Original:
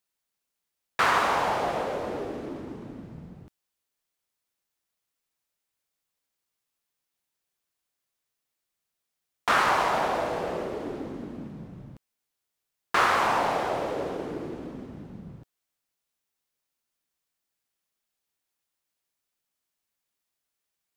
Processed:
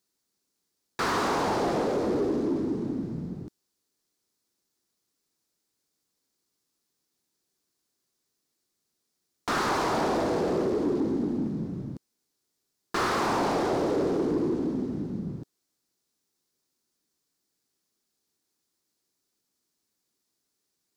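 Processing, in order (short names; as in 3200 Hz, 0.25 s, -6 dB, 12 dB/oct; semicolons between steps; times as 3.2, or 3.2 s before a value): band shelf 1300 Hz -15.5 dB 3 oct; overdrive pedal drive 22 dB, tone 1200 Hz, clips at -20.5 dBFS; gain +5 dB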